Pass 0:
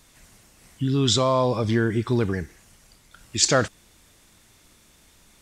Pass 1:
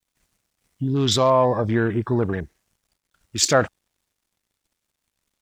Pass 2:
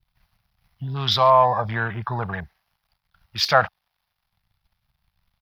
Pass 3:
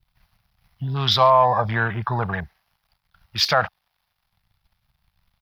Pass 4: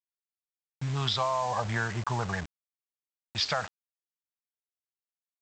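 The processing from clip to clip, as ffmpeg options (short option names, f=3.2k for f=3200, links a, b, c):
-af "adynamicequalizer=threshold=0.0224:dfrequency=770:dqfactor=1.1:tfrequency=770:tqfactor=1.1:attack=5:release=100:ratio=0.375:range=3:mode=boostabove:tftype=bell,acrusher=bits=7:mix=0:aa=0.5,afwtdn=0.0224"
-filter_complex "[0:a]firequalizer=gain_entry='entry(180,0);entry(280,-16);entry(750,10);entry(1900,6);entry(5000,5);entry(7400,-25);entry(11000,2)':delay=0.05:min_phase=1,acrossover=split=170|1000|3400[a][b][c][d];[a]acompressor=mode=upward:threshold=-48dB:ratio=2.5[e];[e][b][c][d]amix=inputs=4:normalize=0,volume=-3.5dB"
-af "alimiter=limit=-8.5dB:level=0:latency=1:release=160,volume=3dB"
-af "acompressor=threshold=-19dB:ratio=16,aresample=16000,acrusher=bits=5:mix=0:aa=0.000001,aresample=44100,volume=-5.5dB"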